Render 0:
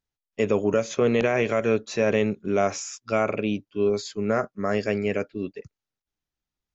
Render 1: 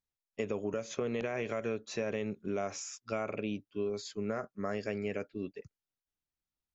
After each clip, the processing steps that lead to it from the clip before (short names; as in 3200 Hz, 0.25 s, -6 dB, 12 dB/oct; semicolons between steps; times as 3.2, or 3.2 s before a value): compressor, threshold -23 dBFS, peak gain reduction 7 dB; gain -7.5 dB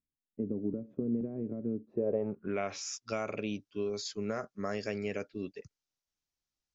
low-pass sweep 270 Hz -> 5900 Hz, 1.89–2.89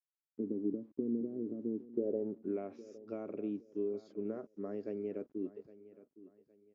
level-crossing sampler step -55 dBFS; band-pass 320 Hz, Q 2.6; feedback echo 0.813 s, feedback 33%, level -17.5 dB; gain +2.5 dB